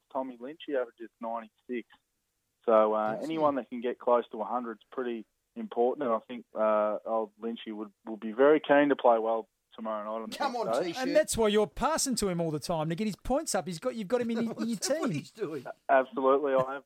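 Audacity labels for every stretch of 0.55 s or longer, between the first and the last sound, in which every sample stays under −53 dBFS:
1.950000	2.640000	silence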